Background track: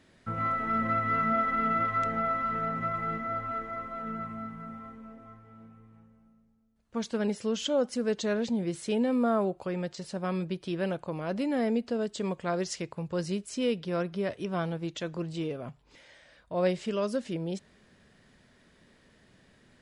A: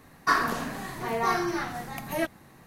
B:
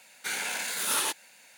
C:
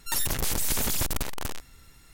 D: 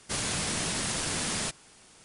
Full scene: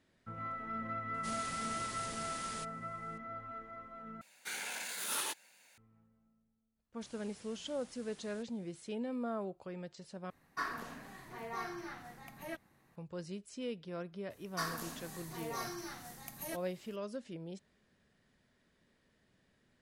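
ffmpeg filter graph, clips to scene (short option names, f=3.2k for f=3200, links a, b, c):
-filter_complex "[4:a]asplit=2[a][b];[1:a]asplit=2[c][d];[0:a]volume=-12dB[e];[b]acompressor=threshold=-39dB:ratio=6:attack=3.2:release=140:knee=1:detection=peak[f];[c]equalizer=f=2k:w=1.5:g=2.5[g];[d]bass=f=250:g=2,treble=f=4k:g=14[h];[e]asplit=3[i][j][k];[i]atrim=end=4.214[l];[2:a]atrim=end=1.57,asetpts=PTS-STARTPTS,volume=-9dB[m];[j]atrim=start=5.776:end=10.304[n];[g]atrim=end=2.66,asetpts=PTS-STARTPTS,volume=-16dB[o];[k]atrim=start=12.956[p];[a]atrim=end=2.04,asetpts=PTS-STARTPTS,volume=-14.5dB,afade=t=in:d=0.004:c=hsin,afade=t=out:st=2.036:d=0.004:c=hsin,adelay=1140[q];[f]atrim=end=2.04,asetpts=PTS-STARTPTS,volume=-17.5dB,afade=t=in:d=0.1,afade=t=out:st=1.94:d=0.1,adelay=6920[r];[h]atrim=end=2.66,asetpts=PTS-STARTPTS,volume=-16.5dB,afade=t=in:d=0.004:c=hsin,afade=t=out:st=2.656:d=0.004:c=hsin,adelay=14300[s];[l][m]acrossfade=d=0.004:c1=hsin:c2=hsin[t];[t][n]acrossfade=d=0.004:c1=hsin:c2=hsin[u];[u][o]acrossfade=d=0.004:c1=hsin:c2=hsin[v];[v][p]acrossfade=d=0.004:c1=hsin:c2=hsin[w];[w][q][r][s]amix=inputs=4:normalize=0"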